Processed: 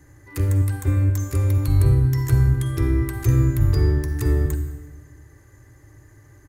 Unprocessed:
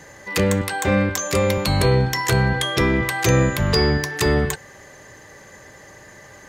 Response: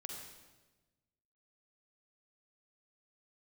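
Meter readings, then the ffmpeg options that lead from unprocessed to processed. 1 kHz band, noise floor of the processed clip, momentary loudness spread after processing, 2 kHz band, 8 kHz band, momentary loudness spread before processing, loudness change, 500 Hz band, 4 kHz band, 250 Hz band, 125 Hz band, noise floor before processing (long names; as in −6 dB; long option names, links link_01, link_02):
−15.0 dB, −51 dBFS, 7 LU, −15.5 dB, −11.0 dB, 4 LU, −1.0 dB, −10.5 dB, −18.5 dB, −4.5 dB, +4.0 dB, −45 dBFS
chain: -filter_complex "[0:a]firequalizer=gain_entry='entry(120,0);entry(190,-29);entry(290,-5);entry(500,-24);entry(1300,-18);entry(3100,-26);entry(11000,-10)':delay=0.05:min_phase=1,asplit=2[link_01][link_02];[1:a]atrim=start_sample=2205[link_03];[link_02][link_03]afir=irnorm=-1:irlink=0,volume=3.5dB[link_04];[link_01][link_04]amix=inputs=2:normalize=0"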